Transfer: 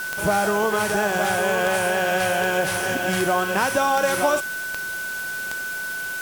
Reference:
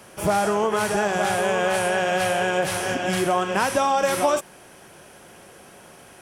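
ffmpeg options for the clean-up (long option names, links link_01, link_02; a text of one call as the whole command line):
ffmpeg -i in.wav -af "adeclick=threshold=4,bandreject=frequency=1500:width=30,afwtdn=0.014" out.wav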